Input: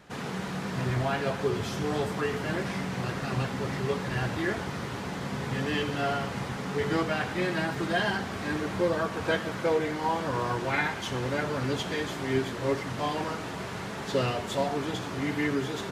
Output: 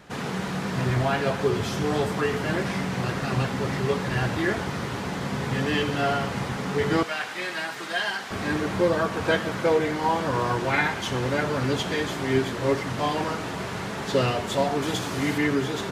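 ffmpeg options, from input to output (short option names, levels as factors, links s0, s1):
-filter_complex "[0:a]asettb=1/sr,asplit=3[s0][s1][s2];[s0]atrim=end=7.034[s3];[s1]atrim=start=7.03:end=8.31,asetpts=PTS-STARTPTS,afade=t=in:d=0.004:c=qsin,afade=t=out:st=1.276:d=0.004:c=qsin,highpass=f=1400:p=1[s4];[s2]atrim=start=8.306[s5];[s3][s4]acrossfade=d=0.004:c1=hsin:c2=qsin[s6];[s6][s5]acrossfade=d=0.004:c1=qsin:c2=hsin,asettb=1/sr,asplit=3[s7][s8][s9];[s7]atrim=end=14.824[s10];[s8]atrim=start=14.82:end=15.38,asetpts=PTS-STARTPTS,afade=t=in:d=0.004:c=qsin,afade=t=out:st=0.556:d=0.004:c=qsin,highshelf=f=4900:g=8.5[s11];[s9]atrim=start=15.376[s12];[s10][s11]acrossfade=d=0.004:c1=hsin:c2=qsin[s13];[s13][s12]acrossfade=d=0.004:c1=qsin:c2=hsin,volume=1.68"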